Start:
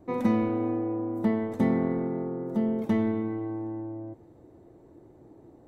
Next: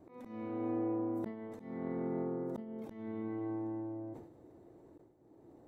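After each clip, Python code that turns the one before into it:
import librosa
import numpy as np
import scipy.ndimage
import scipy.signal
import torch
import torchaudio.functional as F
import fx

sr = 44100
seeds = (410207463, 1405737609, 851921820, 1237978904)

y = fx.low_shelf(x, sr, hz=110.0, db=-7.0)
y = fx.auto_swell(y, sr, attack_ms=600.0)
y = fx.sustainer(y, sr, db_per_s=73.0)
y = y * librosa.db_to_amplitude(-4.0)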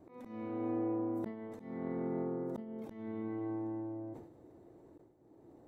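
y = x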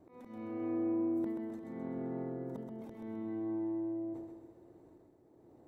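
y = fx.echo_feedback(x, sr, ms=130, feedback_pct=49, wet_db=-5)
y = y * librosa.db_to_amplitude(-2.5)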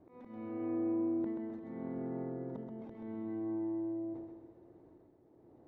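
y = fx.air_absorb(x, sr, metres=210.0)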